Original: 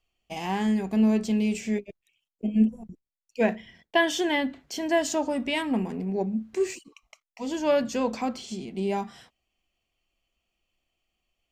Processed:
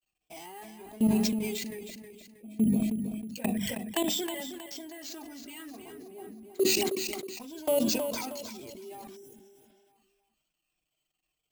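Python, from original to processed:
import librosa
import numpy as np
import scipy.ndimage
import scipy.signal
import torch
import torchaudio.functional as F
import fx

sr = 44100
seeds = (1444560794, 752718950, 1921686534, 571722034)

p1 = fx.spec_ripple(x, sr, per_octave=1.7, drift_hz=-1.8, depth_db=10)
p2 = fx.highpass(p1, sr, hz=91.0, slope=6)
p3 = fx.level_steps(p2, sr, step_db=20)
p4 = fx.hum_notches(p3, sr, base_hz=50, count=6)
p5 = fx.env_flanger(p4, sr, rest_ms=6.6, full_db=-26.5)
p6 = np.repeat(p5[::4], 4)[:len(p5)]
p7 = fx.low_shelf(p6, sr, hz=450.0, db=3.5)
p8 = fx.notch(p7, sr, hz=500.0, q=14.0)
p9 = p8 + fx.echo_feedback(p8, sr, ms=317, feedback_pct=36, wet_db=-9, dry=0)
p10 = fx.spec_repair(p9, sr, seeds[0], start_s=9.19, length_s=0.64, low_hz=580.0, high_hz=5300.0, source='after')
p11 = fx.high_shelf(p10, sr, hz=4300.0, db=8.5)
p12 = fx.sustainer(p11, sr, db_per_s=26.0)
y = F.gain(torch.from_numpy(p12), -4.0).numpy()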